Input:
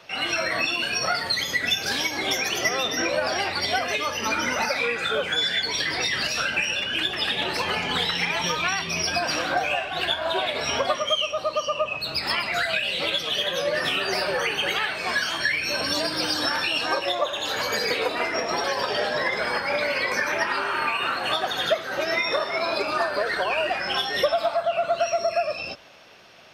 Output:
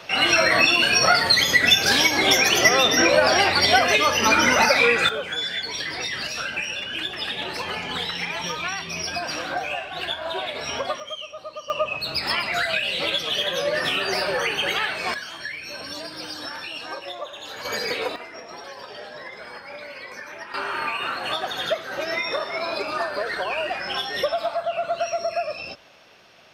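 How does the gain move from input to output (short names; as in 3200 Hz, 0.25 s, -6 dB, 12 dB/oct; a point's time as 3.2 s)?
+7.5 dB
from 5.09 s -3.5 dB
from 11 s -10.5 dB
from 11.7 s +1 dB
from 15.14 s -9 dB
from 17.65 s -2 dB
from 18.16 s -13 dB
from 20.54 s -2 dB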